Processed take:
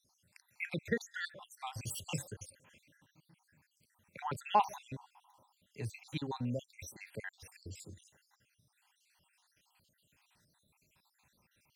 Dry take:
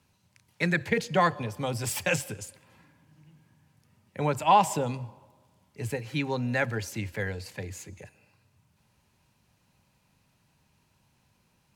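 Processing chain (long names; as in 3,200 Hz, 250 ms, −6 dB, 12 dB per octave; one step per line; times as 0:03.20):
time-frequency cells dropped at random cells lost 68%
one half of a high-frequency compander encoder only
level −6 dB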